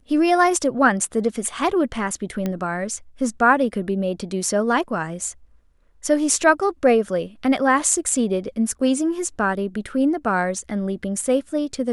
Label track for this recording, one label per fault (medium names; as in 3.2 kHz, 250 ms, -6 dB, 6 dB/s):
2.460000	2.460000	pop -12 dBFS